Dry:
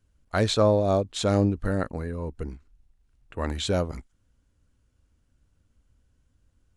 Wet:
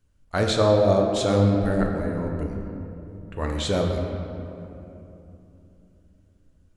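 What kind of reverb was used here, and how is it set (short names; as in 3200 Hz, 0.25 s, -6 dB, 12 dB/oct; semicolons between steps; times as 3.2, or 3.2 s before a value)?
shoebox room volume 140 m³, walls hard, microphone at 0.37 m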